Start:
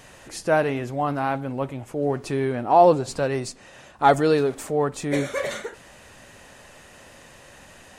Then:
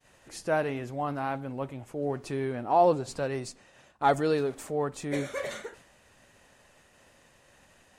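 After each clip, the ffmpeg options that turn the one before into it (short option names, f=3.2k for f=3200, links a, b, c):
-af "agate=range=-33dB:threshold=-42dB:ratio=3:detection=peak,volume=-7dB"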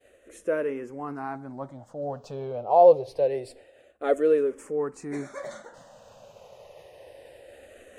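-filter_complex "[0:a]equalizer=f=520:t=o:w=1.1:g=14,areverse,acompressor=mode=upward:threshold=-33dB:ratio=2.5,areverse,asplit=2[a][b];[b]afreqshift=-0.26[c];[a][c]amix=inputs=2:normalize=1,volume=-4dB"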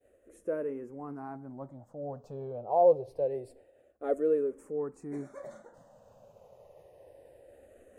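-af "equalizer=f=3.5k:w=0.4:g=-15,volume=-4dB"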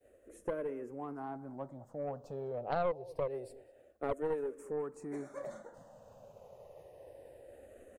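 -filter_complex "[0:a]asplit=2[a][b];[b]adelay=204.1,volume=-23dB,highshelf=f=4k:g=-4.59[c];[a][c]amix=inputs=2:normalize=0,acrossover=split=360|860[d][e][f];[d]acompressor=threshold=-49dB:ratio=4[g];[e]acompressor=threshold=-40dB:ratio=4[h];[f]acompressor=threshold=-49dB:ratio=4[i];[g][h][i]amix=inputs=3:normalize=0,aeval=exprs='0.0501*(cos(1*acos(clip(val(0)/0.0501,-1,1)))-cos(1*PI/2))+0.0158*(cos(4*acos(clip(val(0)/0.0501,-1,1)))-cos(4*PI/2))+0.00891*(cos(6*acos(clip(val(0)/0.0501,-1,1)))-cos(6*PI/2))+0.000398*(cos(7*acos(clip(val(0)/0.0501,-1,1)))-cos(7*PI/2))+0.000708*(cos(8*acos(clip(val(0)/0.0501,-1,1)))-cos(8*PI/2))':c=same,volume=2dB"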